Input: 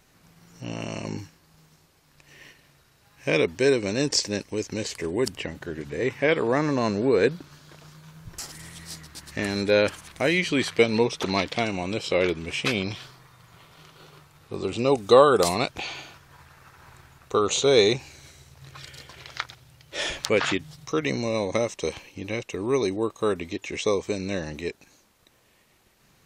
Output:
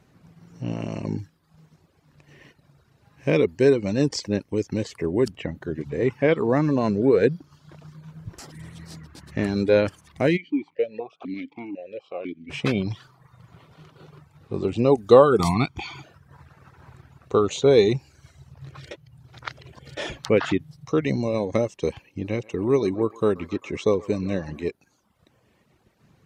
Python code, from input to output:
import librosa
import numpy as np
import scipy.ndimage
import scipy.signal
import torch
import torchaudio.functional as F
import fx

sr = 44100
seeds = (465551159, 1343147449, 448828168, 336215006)

y = fx.vowel_held(x, sr, hz=4.0, at=(10.36, 12.49), fade=0.02)
y = fx.comb(y, sr, ms=0.9, depth=0.83, at=(15.39, 16.04))
y = fx.echo_banded(y, sr, ms=130, feedback_pct=67, hz=1100.0, wet_db=-9.0, at=(22.2, 24.7))
y = fx.edit(y, sr, fx.reverse_span(start_s=18.91, length_s=1.06), tone=tone)
y = fx.dereverb_blind(y, sr, rt60_s=0.71)
y = scipy.signal.sosfilt(scipy.signal.butter(2, 100.0, 'highpass', fs=sr, output='sos'), y)
y = fx.tilt_eq(y, sr, slope=-3.0)